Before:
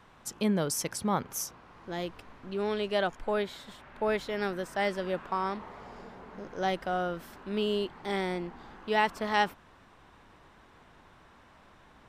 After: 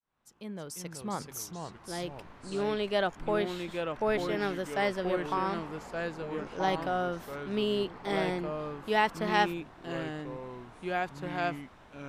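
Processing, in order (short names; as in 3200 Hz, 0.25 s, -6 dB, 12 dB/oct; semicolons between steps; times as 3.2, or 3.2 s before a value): opening faded in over 2.45 s; echoes that change speed 0.271 s, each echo -3 st, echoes 2, each echo -6 dB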